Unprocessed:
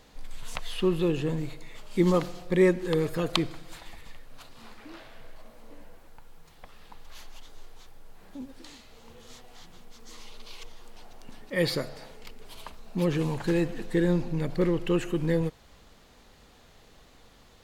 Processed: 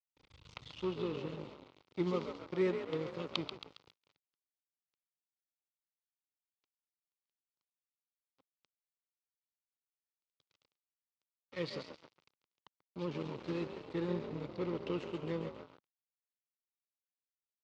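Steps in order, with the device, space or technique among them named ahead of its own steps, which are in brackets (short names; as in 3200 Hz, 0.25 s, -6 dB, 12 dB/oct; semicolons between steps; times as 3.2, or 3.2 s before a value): 2.47–2.98 expander -23 dBFS; frequency-shifting echo 0.136 s, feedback 61%, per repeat +51 Hz, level -7 dB; blown loudspeaker (crossover distortion -32 dBFS; speaker cabinet 120–5100 Hz, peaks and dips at 220 Hz -7 dB, 690 Hz -8 dB, 1700 Hz -9 dB); gain -8.5 dB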